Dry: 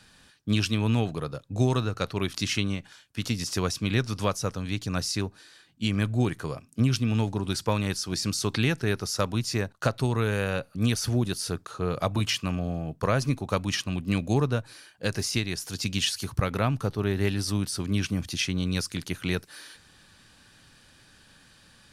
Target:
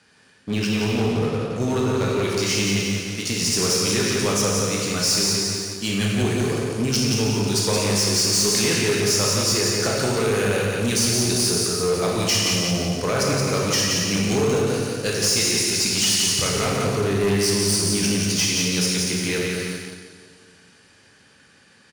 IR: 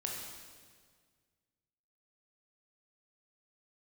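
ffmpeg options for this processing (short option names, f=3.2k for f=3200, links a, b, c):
-filter_complex "[0:a]highpass=110,equalizer=f=120:t=q:w=4:g=-5,equalizer=f=430:t=q:w=4:g=7,equalizer=f=2.1k:t=q:w=4:g=4,equalizer=f=3.7k:t=q:w=4:g=-6,equalizer=f=8.1k:t=q:w=4:g=-3,lowpass=f=9.8k:w=0.5412,lowpass=f=9.8k:w=1.3066[a];[1:a]atrim=start_sample=2205[b];[a][b]afir=irnorm=-1:irlink=0,acrossover=split=4300[c][d];[d]dynaudnorm=f=250:g=21:m=14.5dB[e];[c][e]amix=inputs=2:normalize=0,aecho=1:1:175|350|525|700|875:0.596|0.238|0.0953|0.0381|0.0152,asplit=2[f][g];[g]acrusher=bits=4:mix=0:aa=0.5,volume=-5.5dB[h];[f][h]amix=inputs=2:normalize=0,asoftclip=type=tanh:threshold=-15dB"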